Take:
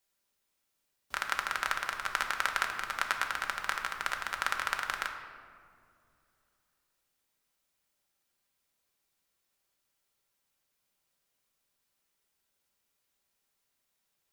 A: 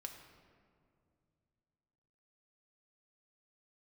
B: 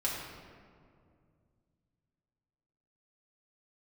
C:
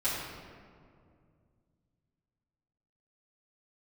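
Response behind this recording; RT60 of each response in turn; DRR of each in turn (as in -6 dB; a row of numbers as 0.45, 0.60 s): A; 2.3, 2.3, 2.2 s; 3.0, -6.0, -13.0 dB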